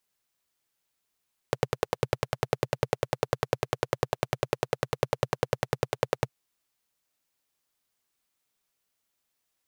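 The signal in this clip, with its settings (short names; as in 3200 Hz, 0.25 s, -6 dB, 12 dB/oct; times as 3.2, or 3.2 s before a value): single-cylinder engine model, steady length 4.80 s, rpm 1200, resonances 130/470 Hz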